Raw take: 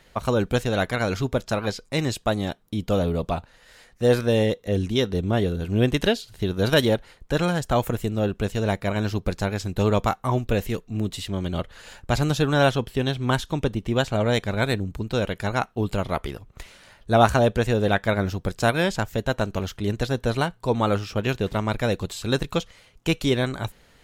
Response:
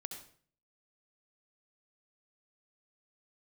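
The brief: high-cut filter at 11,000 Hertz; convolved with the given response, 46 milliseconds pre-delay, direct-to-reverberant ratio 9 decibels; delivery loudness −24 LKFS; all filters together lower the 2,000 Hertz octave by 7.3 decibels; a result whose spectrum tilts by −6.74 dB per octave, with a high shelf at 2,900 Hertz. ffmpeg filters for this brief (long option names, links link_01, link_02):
-filter_complex "[0:a]lowpass=11000,equalizer=frequency=2000:width_type=o:gain=-8,highshelf=frequency=2900:gain=-7,asplit=2[link_01][link_02];[1:a]atrim=start_sample=2205,adelay=46[link_03];[link_02][link_03]afir=irnorm=-1:irlink=0,volume=-6.5dB[link_04];[link_01][link_04]amix=inputs=2:normalize=0,volume=1dB"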